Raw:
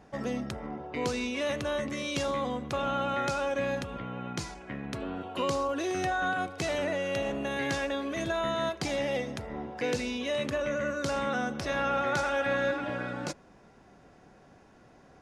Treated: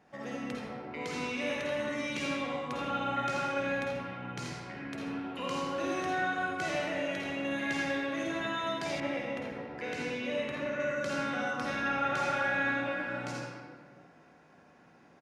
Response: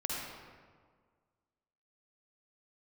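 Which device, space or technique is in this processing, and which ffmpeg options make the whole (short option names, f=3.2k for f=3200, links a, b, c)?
PA in a hall: -filter_complex "[0:a]highpass=120,equalizer=f=2.1k:t=o:w=1.2:g=5.5,aecho=1:1:83:0.335[a];[1:a]atrim=start_sample=2205[b];[a][b]afir=irnorm=-1:irlink=0,asettb=1/sr,asplit=3[c][d][e];[c]atrim=end=9.004[f];[d]atrim=start=9:end=10.8,asetpts=PTS-STARTPTS,afade=t=in:d=0.004:c=qsin,afade=t=out:st=1.796:d=0.004:c=qsin,adynamicequalizer=threshold=0.00708:dfrequency=2900:dqfactor=0.7:tfrequency=2900:tqfactor=0.7:attack=5:release=100:ratio=0.375:range=3.5:mode=cutabove:tftype=highshelf[g];[e]atrim=start=10.796[h];[f][g]acrossfade=d=0.004:c1=hsin:c2=qsin[i];[i][h]acrossfade=d=0.004:c1=qsin:c2=hsin,volume=-8dB"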